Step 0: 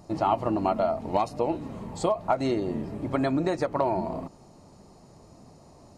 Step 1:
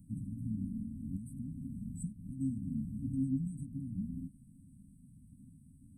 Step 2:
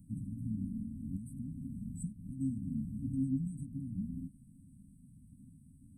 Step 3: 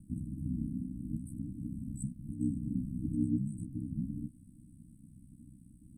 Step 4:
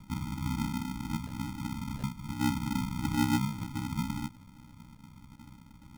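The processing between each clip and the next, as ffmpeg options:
-filter_complex "[0:a]afftfilt=real='re*(1-between(b*sr/4096,280,7800))':imag='im*(1-between(b*sr/4096,280,7800))':win_size=4096:overlap=0.75,acrossover=split=320|650|2700[a][b][c][d];[b]acompressor=threshold=-52dB:ratio=6[e];[a][e][c][d]amix=inputs=4:normalize=0,volume=-3dB"
-af anull
-af "aeval=exprs='val(0)*sin(2*PI*32*n/s)':c=same,volume=5dB"
-af "bandreject=f=61.37:t=h:w=4,bandreject=f=122.74:t=h:w=4,bandreject=f=184.11:t=h:w=4,bandreject=f=245.48:t=h:w=4,acrusher=samples=39:mix=1:aa=0.000001,volume=4dB"

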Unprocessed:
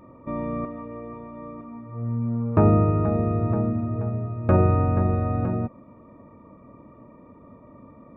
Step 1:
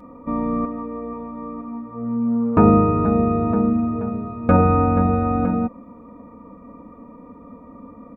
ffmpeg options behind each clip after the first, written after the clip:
-af "aecho=1:1:4.1:0.83,volume=3.5dB"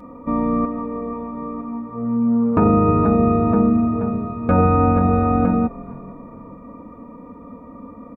-filter_complex "[0:a]asplit=4[a][b][c][d];[b]adelay=457,afreqshift=-41,volume=-21dB[e];[c]adelay=914,afreqshift=-82,volume=-29.6dB[f];[d]adelay=1371,afreqshift=-123,volume=-38.3dB[g];[a][e][f][g]amix=inputs=4:normalize=0,alimiter=level_in=8.5dB:limit=-1dB:release=50:level=0:latency=1,volume=-5.5dB"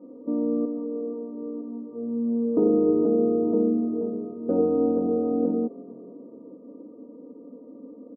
-af "asuperpass=centerf=370:order=4:qfactor=1.6"

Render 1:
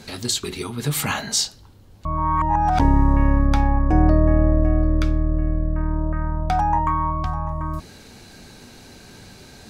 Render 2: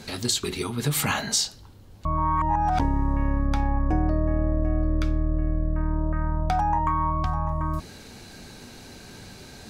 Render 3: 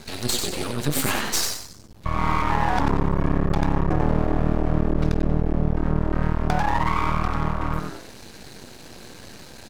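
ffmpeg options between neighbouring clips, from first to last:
-af "acompressor=threshold=-19dB:ratio=6"
-filter_complex "[0:a]asplit=6[a][b][c][d][e][f];[b]adelay=93,afreqshift=120,volume=-4dB[g];[c]adelay=186,afreqshift=240,volume=-12.4dB[h];[d]adelay=279,afreqshift=360,volume=-20.8dB[i];[e]adelay=372,afreqshift=480,volume=-29.2dB[j];[f]adelay=465,afreqshift=600,volume=-37.6dB[k];[a][g][h][i][j][k]amix=inputs=6:normalize=0,aeval=exprs='max(val(0),0)':c=same,volume=3.5dB"

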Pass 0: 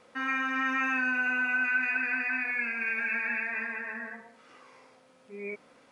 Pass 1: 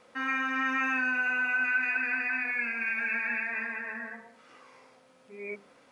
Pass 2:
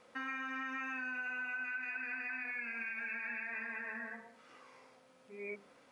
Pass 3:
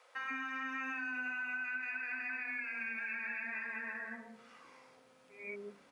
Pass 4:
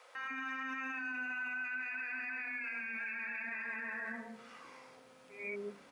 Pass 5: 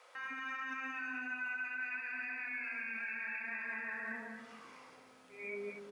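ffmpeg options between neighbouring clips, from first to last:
-af "bandreject=f=50:t=h:w=6,bandreject=f=100:t=h:w=6,bandreject=f=150:t=h:w=6,bandreject=f=200:t=h:w=6,bandreject=f=250:t=h:w=6,bandreject=f=300:t=h:w=6,bandreject=f=350:t=h:w=6,bandreject=f=400:t=h:w=6,bandreject=f=450:t=h:w=6"
-af "acompressor=threshold=-34dB:ratio=6,volume=-4dB"
-filter_complex "[0:a]acrossover=split=510[a][b];[a]adelay=150[c];[c][b]amix=inputs=2:normalize=0,volume=1dB"
-af "alimiter=level_in=13.5dB:limit=-24dB:level=0:latency=1:release=34,volume=-13.5dB,volume=4.5dB"
-af "aecho=1:1:32.07|69.97|236.2:0.316|0.251|0.447,volume=-2dB"

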